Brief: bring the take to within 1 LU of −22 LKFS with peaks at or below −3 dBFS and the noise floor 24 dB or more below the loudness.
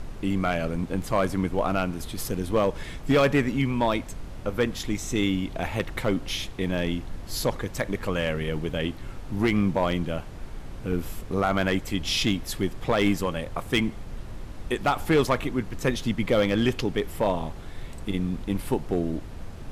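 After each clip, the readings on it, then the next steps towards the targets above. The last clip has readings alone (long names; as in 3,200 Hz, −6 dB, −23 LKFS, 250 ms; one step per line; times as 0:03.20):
share of clipped samples 0.4%; peaks flattened at −14.5 dBFS; background noise floor −39 dBFS; target noise floor −51 dBFS; integrated loudness −27.0 LKFS; sample peak −14.5 dBFS; target loudness −22.0 LKFS
→ clipped peaks rebuilt −14.5 dBFS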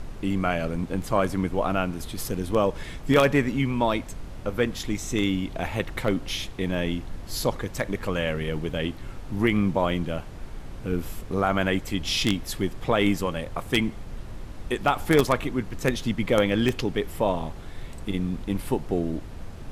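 share of clipped samples 0.0%; background noise floor −39 dBFS; target noise floor −51 dBFS
→ noise reduction from a noise print 12 dB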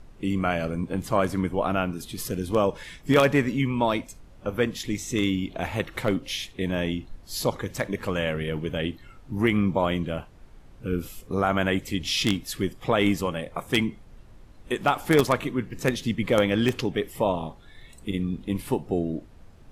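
background noise floor −49 dBFS; target noise floor −51 dBFS
→ noise reduction from a noise print 6 dB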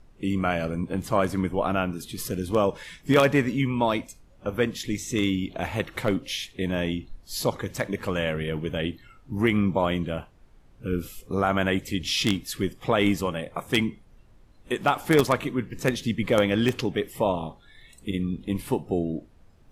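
background noise floor −55 dBFS; integrated loudness −26.5 LKFS; sample peak −5.0 dBFS; target loudness −22.0 LKFS
→ level +4.5 dB
brickwall limiter −3 dBFS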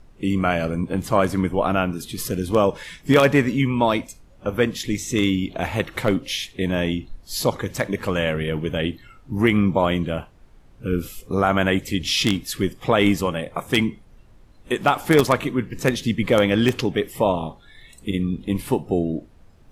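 integrated loudness −22.0 LKFS; sample peak −3.0 dBFS; background noise floor −50 dBFS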